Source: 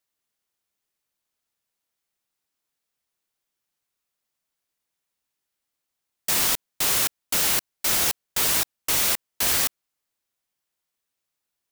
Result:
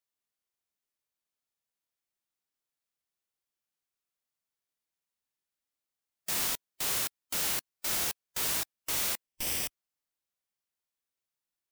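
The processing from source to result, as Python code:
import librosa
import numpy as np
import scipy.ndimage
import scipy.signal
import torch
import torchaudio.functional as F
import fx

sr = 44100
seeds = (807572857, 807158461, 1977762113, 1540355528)

y = fx.lower_of_two(x, sr, delay_ms=0.37, at=(9.26, 9.66), fade=0.02)
y = fx.hpss(y, sr, part='percussive', gain_db=-5)
y = F.gain(torch.from_numpy(y), -6.5).numpy()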